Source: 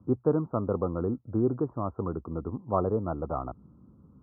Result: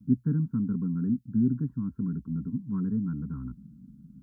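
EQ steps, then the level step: elliptic band-stop 290–1400 Hz, stop band 80 dB; static phaser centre 330 Hz, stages 6; +8.5 dB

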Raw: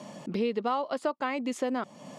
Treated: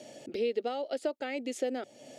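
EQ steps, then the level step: static phaser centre 440 Hz, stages 4; 0.0 dB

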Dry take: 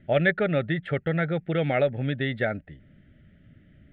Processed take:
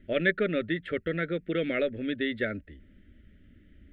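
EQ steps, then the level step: bass shelf 110 Hz +7.5 dB; static phaser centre 330 Hz, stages 4; 0.0 dB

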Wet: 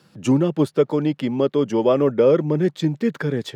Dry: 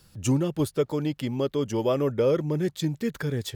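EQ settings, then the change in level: high-pass 150 Hz 24 dB/octave; treble shelf 3.8 kHz -8.5 dB; treble shelf 8.5 kHz -11.5 dB; +7.5 dB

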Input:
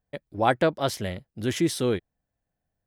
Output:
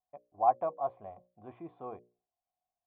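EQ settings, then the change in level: cascade formant filter a; distance through air 55 m; hum notches 60/120/180/240/300/360/420/480/540/600 Hz; +3.5 dB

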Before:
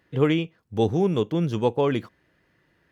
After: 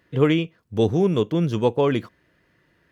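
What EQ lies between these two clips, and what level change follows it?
band-stop 810 Hz, Q 12; +2.5 dB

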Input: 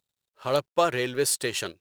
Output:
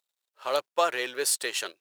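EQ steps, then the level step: high-pass 560 Hz 12 dB/octave; 0.0 dB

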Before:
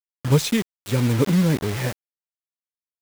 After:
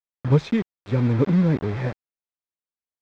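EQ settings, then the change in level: distance through air 160 m; treble shelf 3.1 kHz -11.5 dB; band-stop 2.9 kHz, Q 12; 0.0 dB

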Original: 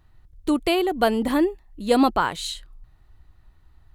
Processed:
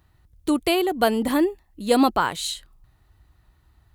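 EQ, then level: high-pass 49 Hz 12 dB/octave; treble shelf 6.9 kHz +7 dB; 0.0 dB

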